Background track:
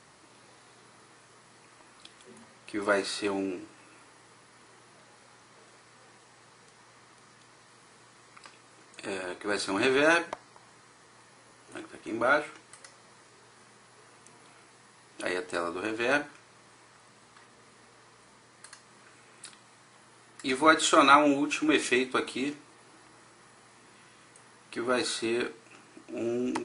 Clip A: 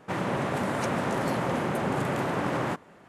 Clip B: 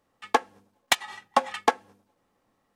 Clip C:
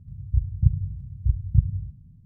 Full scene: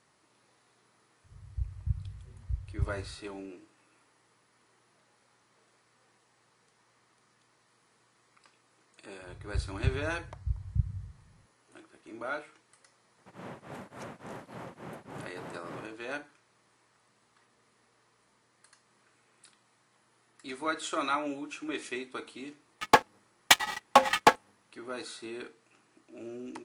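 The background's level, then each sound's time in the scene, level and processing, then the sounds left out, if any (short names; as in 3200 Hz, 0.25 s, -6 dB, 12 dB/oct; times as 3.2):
background track -11.5 dB
1.24 add C -11.5 dB + bell 190 Hz -6 dB 1.1 oct
9.21 add C -10.5 dB
13.18 add A -14 dB + beating tremolo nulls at 3.5 Hz
22.59 add B -3.5 dB + sample leveller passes 3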